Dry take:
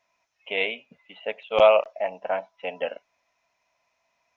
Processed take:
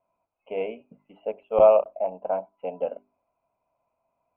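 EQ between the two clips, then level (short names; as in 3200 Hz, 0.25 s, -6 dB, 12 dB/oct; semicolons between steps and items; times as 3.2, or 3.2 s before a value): running mean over 24 samples; air absorption 490 m; notches 50/100/150/200/250/300/350/400 Hz; +4.0 dB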